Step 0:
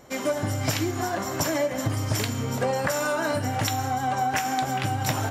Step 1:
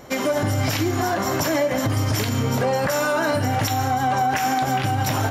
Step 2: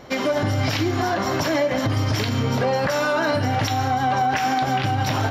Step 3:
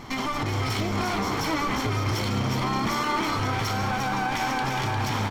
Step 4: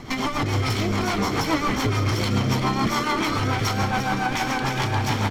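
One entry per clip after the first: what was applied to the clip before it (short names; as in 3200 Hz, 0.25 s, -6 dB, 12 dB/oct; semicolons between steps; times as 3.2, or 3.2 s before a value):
bell 7900 Hz -6.5 dB 0.36 oct; limiter -21 dBFS, peak gain reduction 8.5 dB; gain +8 dB
resonant high shelf 6200 Hz -9.5 dB, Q 1.5
minimum comb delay 0.93 ms; limiter -23.5 dBFS, peak gain reduction 11.5 dB; frequency-shifting echo 0.353 s, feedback 50%, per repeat +100 Hz, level -6 dB; gain +3.5 dB
rotary speaker horn 7 Hz; gain +5.5 dB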